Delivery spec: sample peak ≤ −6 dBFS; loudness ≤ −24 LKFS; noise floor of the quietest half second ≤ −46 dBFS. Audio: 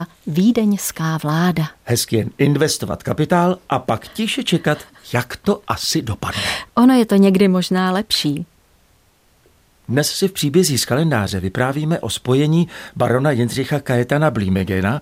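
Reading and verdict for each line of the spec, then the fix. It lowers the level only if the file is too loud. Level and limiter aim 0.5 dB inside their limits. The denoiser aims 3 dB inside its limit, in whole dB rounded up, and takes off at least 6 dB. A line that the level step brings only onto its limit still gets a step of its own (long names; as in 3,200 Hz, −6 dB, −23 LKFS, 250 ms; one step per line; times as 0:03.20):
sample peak −3.5 dBFS: out of spec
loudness −18.0 LKFS: out of spec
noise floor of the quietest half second −56 dBFS: in spec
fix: level −6.5 dB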